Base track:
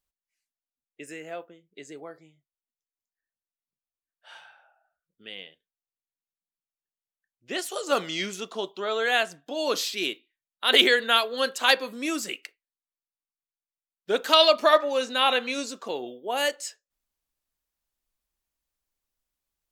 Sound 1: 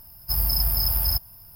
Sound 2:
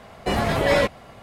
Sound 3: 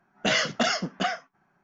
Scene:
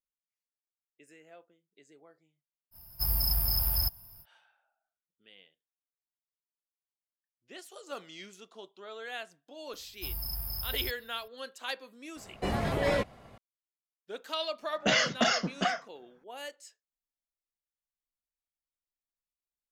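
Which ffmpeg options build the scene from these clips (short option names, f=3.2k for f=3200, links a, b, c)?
-filter_complex "[1:a]asplit=2[a][b];[0:a]volume=-16.5dB[c];[2:a]lowshelf=f=450:g=4[d];[a]atrim=end=1.55,asetpts=PTS-STARTPTS,volume=-5.5dB,afade=t=in:d=0.05,afade=t=out:st=1.5:d=0.05,adelay=2710[e];[b]atrim=end=1.55,asetpts=PTS-STARTPTS,volume=-14dB,afade=t=in:d=0.004:c=hsin,afade=t=out:st=1.546:d=0.004:c=hsin,adelay=9730[f];[d]atrim=end=1.22,asetpts=PTS-STARTPTS,volume=-10.5dB,afade=t=in:d=0.004:c=hsin,afade=t=out:st=1.216:d=0.004:c=hsin,adelay=12160[g];[3:a]atrim=end=1.63,asetpts=PTS-STARTPTS,volume=-2dB,afade=t=in:d=0.004:c=hsin,afade=t=out:st=1.626:d=0.004:c=hsin,adelay=14610[h];[c][e][f][g][h]amix=inputs=5:normalize=0"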